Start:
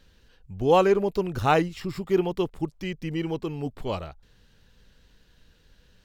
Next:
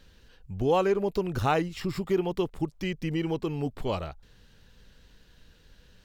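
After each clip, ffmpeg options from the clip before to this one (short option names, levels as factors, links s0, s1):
-af "acompressor=threshold=0.0398:ratio=2,volume=1.26"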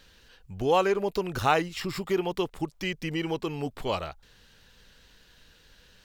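-af "lowshelf=f=480:g=-9.5,volume=1.78"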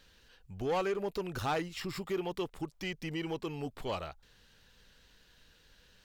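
-af "asoftclip=type=tanh:threshold=0.0944,volume=0.531"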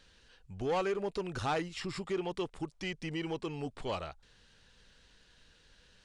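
-af "aresample=22050,aresample=44100"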